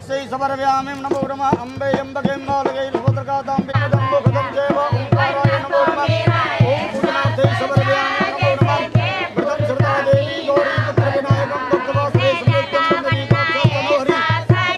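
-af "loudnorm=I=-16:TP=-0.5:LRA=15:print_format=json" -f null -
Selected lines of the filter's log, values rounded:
"input_i" : "-17.1",
"input_tp" : "-1.3",
"input_lra" : "3.5",
"input_thresh" : "-27.1",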